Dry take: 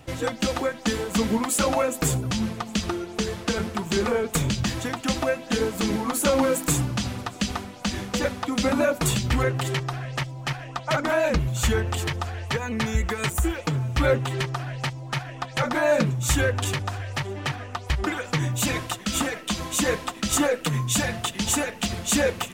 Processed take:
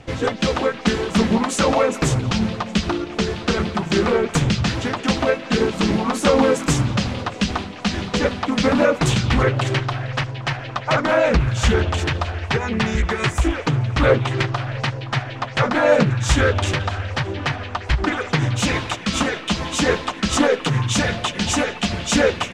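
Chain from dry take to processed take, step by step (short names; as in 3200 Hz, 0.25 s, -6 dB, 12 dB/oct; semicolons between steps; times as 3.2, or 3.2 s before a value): harmoniser -3 st -5 dB; LPF 5700 Hz 12 dB/oct; on a send: delay with a stepping band-pass 0.173 s, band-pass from 3100 Hz, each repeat -0.7 oct, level -10.5 dB; on the sum: Doppler distortion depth 0.29 ms; gain +4.5 dB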